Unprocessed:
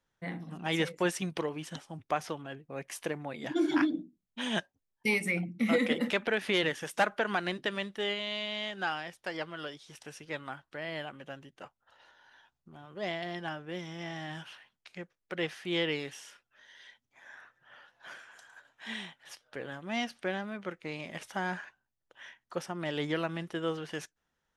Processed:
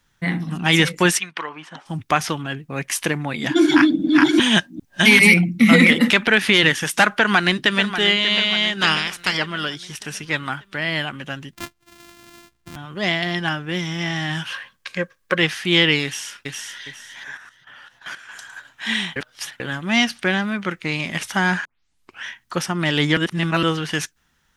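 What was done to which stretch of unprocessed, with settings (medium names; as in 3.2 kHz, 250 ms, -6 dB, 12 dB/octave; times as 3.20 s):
1.18–1.85 s: band-pass filter 2.1 kHz -> 680 Hz, Q 1.5
3.60–5.91 s: chunks repeated in reverse 399 ms, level -1 dB
7.16–7.94 s: echo throw 590 ms, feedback 50%, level -10.5 dB
8.80–9.37 s: spectral peaks clipped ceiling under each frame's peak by 17 dB
11.53–12.76 s: sorted samples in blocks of 128 samples
14.49–15.38 s: small resonant body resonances 530/1100/1600 Hz, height 15 dB, ringing for 40 ms
16.04–16.82 s: echo throw 410 ms, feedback 30%, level -2.5 dB
17.37–18.29 s: level held to a coarse grid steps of 12 dB
19.16–19.60 s: reverse
21.65 s: tape start 0.60 s
23.17–23.63 s: reverse
whole clip: peaking EQ 550 Hz -11 dB 1.5 oct; loudness maximiser +19.5 dB; trim -1 dB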